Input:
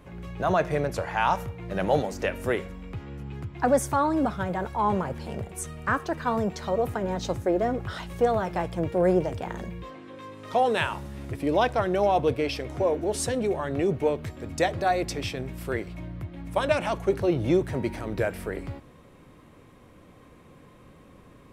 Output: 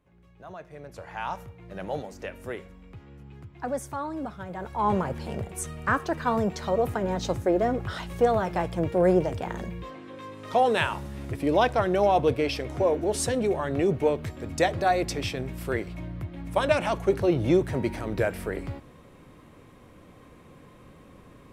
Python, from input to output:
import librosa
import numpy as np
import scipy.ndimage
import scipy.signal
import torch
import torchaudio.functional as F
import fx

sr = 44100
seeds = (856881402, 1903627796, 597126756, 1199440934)

y = fx.gain(x, sr, db=fx.line((0.72, -19.0), (1.12, -9.0), (4.46, -9.0), (4.91, 1.0)))